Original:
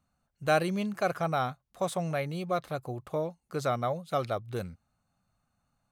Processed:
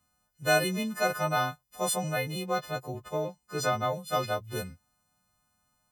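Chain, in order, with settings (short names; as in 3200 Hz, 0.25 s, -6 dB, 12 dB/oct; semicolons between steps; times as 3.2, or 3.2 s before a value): frequency quantiser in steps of 3 st; 2.46–3.92 bell 11000 Hz -9.5 dB 0.5 oct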